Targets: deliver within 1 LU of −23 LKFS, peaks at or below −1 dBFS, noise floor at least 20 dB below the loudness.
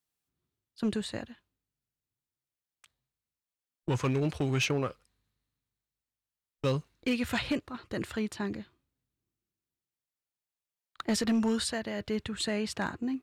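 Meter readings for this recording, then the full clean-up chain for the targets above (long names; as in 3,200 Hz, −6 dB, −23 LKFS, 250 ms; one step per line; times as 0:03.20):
share of clipped samples 0.6%; peaks flattened at −22.5 dBFS; integrated loudness −32.0 LKFS; sample peak −22.5 dBFS; target loudness −23.0 LKFS
→ clipped peaks rebuilt −22.5 dBFS
level +9 dB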